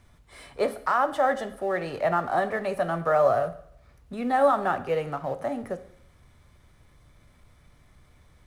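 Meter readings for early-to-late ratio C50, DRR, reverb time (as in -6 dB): 14.0 dB, 10.0 dB, 0.70 s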